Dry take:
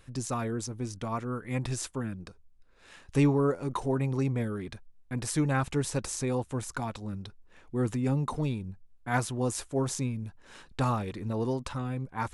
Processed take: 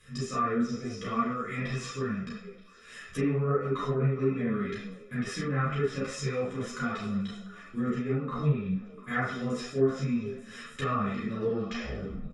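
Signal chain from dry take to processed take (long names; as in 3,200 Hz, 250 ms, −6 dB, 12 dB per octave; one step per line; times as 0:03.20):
turntable brake at the end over 0.92 s
drawn EQ curve 300 Hz 0 dB, 750 Hz −19 dB, 1,500 Hz −3 dB, 5,600 Hz +4 dB
downward compressor 1.5 to 1, threshold −36 dBFS, peak gain reduction 6.5 dB
notch filter 4,600 Hz, Q 18
comb filter 1.6 ms, depth 70%
echo through a band-pass that steps 232 ms, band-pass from 180 Hz, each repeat 1.4 octaves, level −11 dB
convolution reverb RT60 0.60 s, pre-delay 30 ms, DRR −7 dB
treble cut that deepens with the level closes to 1,700 Hz, closed at −19 dBFS
low-shelf EQ 74 Hz −7 dB
string-ensemble chorus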